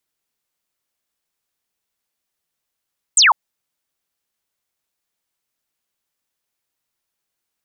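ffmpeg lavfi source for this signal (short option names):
-f lavfi -i "aevalsrc='0.398*clip(t/0.002,0,1)*clip((0.15-t)/0.002,0,1)*sin(2*PI*8700*0.15/log(810/8700)*(exp(log(810/8700)*t/0.15)-1))':d=0.15:s=44100"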